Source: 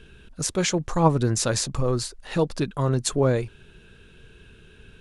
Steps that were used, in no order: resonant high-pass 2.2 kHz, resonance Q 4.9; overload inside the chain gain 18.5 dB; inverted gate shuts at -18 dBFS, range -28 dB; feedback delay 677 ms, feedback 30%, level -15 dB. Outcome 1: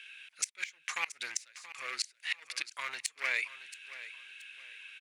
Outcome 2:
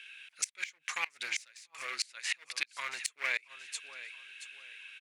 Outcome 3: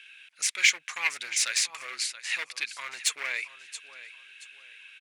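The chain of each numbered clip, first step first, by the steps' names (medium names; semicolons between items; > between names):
overload inside the chain > resonant high-pass > inverted gate > feedback delay; feedback delay > overload inside the chain > resonant high-pass > inverted gate; feedback delay > overload inside the chain > inverted gate > resonant high-pass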